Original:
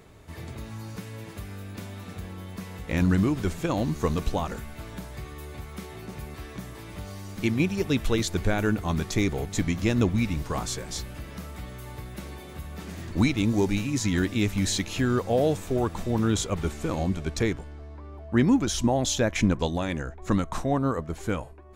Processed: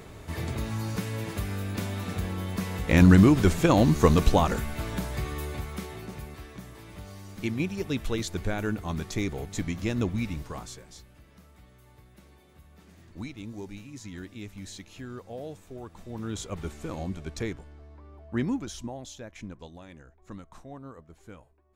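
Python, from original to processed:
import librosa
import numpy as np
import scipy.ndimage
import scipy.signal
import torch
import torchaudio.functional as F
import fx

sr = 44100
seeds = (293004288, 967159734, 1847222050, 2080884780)

y = fx.gain(x, sr, db=fx.line((5.37, 6.5), (6.52, -5.0), (10.33, -5.0), (11.02, -16.0), (15.88, -16.0), (16.54, -7.0), (18.42, -7.0), (19.17, -18.5)))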